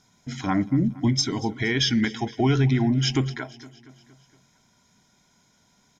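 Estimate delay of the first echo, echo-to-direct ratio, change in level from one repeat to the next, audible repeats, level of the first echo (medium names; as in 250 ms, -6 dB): 233 ms, -18.0 dB, -5.0 dB, 4, -19.5 dB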